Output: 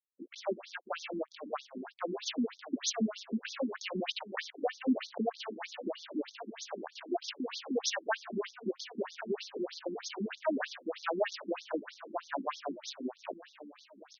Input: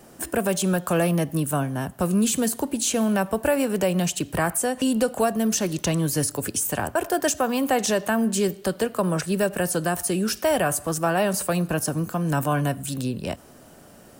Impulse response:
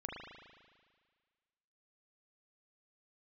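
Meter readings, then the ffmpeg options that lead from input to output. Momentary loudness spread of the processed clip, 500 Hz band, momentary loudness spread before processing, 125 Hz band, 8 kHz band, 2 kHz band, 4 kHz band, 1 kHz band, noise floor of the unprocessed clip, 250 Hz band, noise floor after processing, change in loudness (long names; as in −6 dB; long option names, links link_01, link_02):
10 LU, −12.5 dB, 4 LU, −26.5 dB, −18.0 dB, −11.5 dB, −7.5 dB, −13.0 dB, −49 dBFS, −13.5 dB, −63 dBFS, −13.5 dB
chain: -filter_complex "[0:a]aexciter=amount=8.3:drive=8.1:freq=11000,aeval=exprs='sgn(val(0))*max(abs(val(0))-0.0422,0)':channel_layout=same,highshelf=frequency=9900:gain=5.5,dynaudnorm=framelen=150:gausssize=11:maxgain=11.5dB,asplit=2[link_01][link_02];[link_02]aecho=0:1:1135|2270|3405|4540:0.2|0.0838|0.0352|0.0148[link_03];[link_01][link_03]amix=inputs=2:normalize=0,alimiter=level_in=5dB:limit=-1dB:release=50:level=0:latency=1,afftfilt=real='re*between(b*sr/1024,260*pow(4800/260,0.5+0.5*sin(2*PI*3.2*pts/sr))/1.41,260*pow(4800/260,0.5+0.5*sin(2*PI*3.2*pts/sr))*1.41)':imag='im*between(b*sr/1024,260*pow(4800/260,0.5+0.5*sin(2*PI*3.2*pts/sr))/1.41,260*pow(4800/260,0.5+0.5*sin(2*PI*3.2*pts/sr))*1.41)':win_size=1024:overlap=0.75,volume=-1.5dB"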